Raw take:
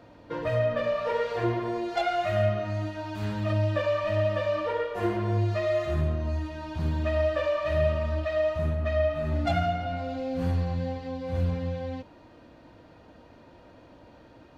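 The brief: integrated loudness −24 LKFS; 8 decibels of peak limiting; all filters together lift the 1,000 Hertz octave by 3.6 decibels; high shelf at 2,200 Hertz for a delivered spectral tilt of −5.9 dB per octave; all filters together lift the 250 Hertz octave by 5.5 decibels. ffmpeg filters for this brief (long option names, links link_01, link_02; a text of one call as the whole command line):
ffmpeg -i in.wav -af "equalizer=frequency=250:width_type=o:gain=7.5,equalizer=frequency=1000:width_type=o:gain=6.5,highshelf=frequency=2200:gain=-8.5,volume=4dB,alimiter=limit=-15.5dB:level=0:latency=1" out.wav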